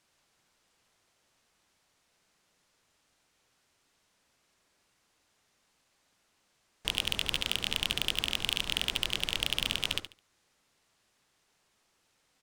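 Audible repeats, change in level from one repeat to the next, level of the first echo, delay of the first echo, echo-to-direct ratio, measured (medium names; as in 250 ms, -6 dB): 2, -13.0 dB, -11.0 dB, 71 ms, -11.0 dB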